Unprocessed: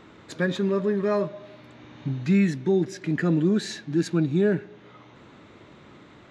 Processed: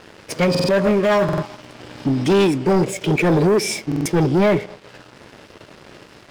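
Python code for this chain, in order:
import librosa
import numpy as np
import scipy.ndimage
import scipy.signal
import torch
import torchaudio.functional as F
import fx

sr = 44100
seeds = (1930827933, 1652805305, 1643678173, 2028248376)

y = fx.formant_shift(x, sr, semitones=5)
y = fx.leveller(y, sr, passes=3)
y = fx.buffer_glitch(y, sr, at_s=(0.5, 1.24, 3.87), block=2048, repeats=3)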